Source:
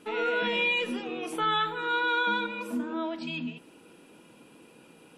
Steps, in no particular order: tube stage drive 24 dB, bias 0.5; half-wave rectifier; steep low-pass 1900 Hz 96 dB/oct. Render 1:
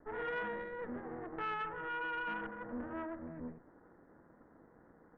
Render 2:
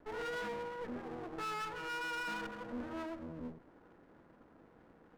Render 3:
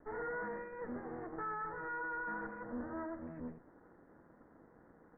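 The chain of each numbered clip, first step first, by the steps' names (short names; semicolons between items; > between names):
half-wave rectifier > steep low-pass > tube stage; steep low-pass > half-wave rectifier > tube stage; half-wave rectifier > tube stage > steep low-pass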